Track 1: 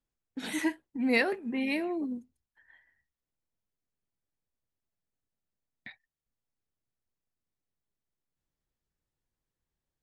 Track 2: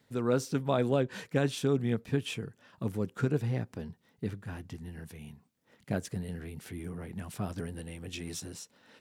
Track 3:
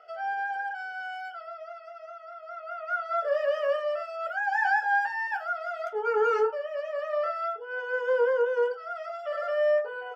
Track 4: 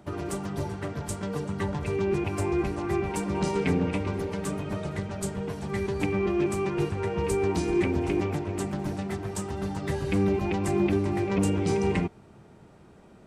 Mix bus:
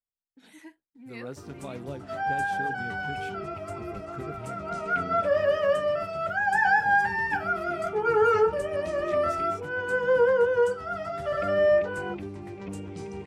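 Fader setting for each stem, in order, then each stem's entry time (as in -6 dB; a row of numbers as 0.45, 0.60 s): -18.0, -11.5, +3.0, -12.5 dB; 0.00, 0.95, 2.00, 1.30 s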